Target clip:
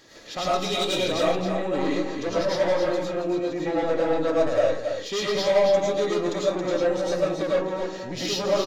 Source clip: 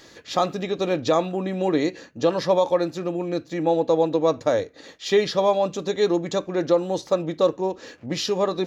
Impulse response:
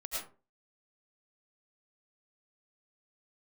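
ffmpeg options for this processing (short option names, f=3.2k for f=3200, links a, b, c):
-filter_complex "[0:a]asettb=1/sr,asplit=3[a][b][c];[a]atrim=end=0.514[d];[b]atrim=start=0.51:end=1.04,asetpts=PTS-STARTPTS,afade=t=in:d=0.004:c=qsin,afade=t=out:st=0.526:d=0.004:c=qsin,highshelf=f=2.3k:t=q:w=1.5:g=10.5[e];[c]atrim=start=1.036[f];[d][e]acrossfade=d=0.004:c1=hsin:c2=qsin[g];[g][f]acrossfade=d=0.004:c1=qsin:c2=hsin,asoftclip=type=tanh:threshold=-19.5dB,aecho=1:1:274:0.447[h];[1:a]atrim=start_sample=2205[i];[h][i]afir=irnorm=-1:irlink=0"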